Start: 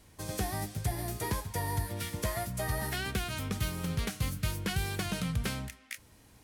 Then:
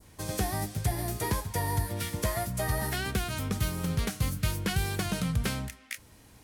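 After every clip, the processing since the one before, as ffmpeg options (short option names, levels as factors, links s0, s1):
-af "adynamicequalizer=threshold=0.00398:dfrequency=2700:dqfactor=0.9:tfrequency=2700:tqfactor=0.9:attack=5:release=100:ratio=0.375:range=2:mode=cutabove:tftype=bell,volume=1.5"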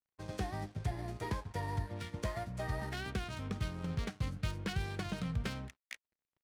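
-af "aeval=exprs='sgn(val(0))*max(abs(val(0))-0.00447,0)':c=same,adynamicsmooth=sensitivity=7:basefreq=2900,volume=0.473"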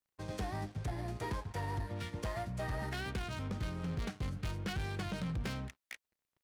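-af "asoftclip=type=tanh:threshold=0.0168,volume=1.5"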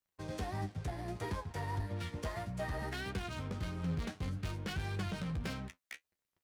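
-af "flanger=delay=9.9:depth=3.5:regen=43:speed=1.6:shape=triangular,volume=1.5"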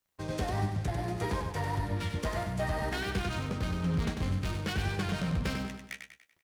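-af "aecho=1:1:96|192|288|384|480:0.501|0.216|0.0927|0.0398|0.0171,volume=2"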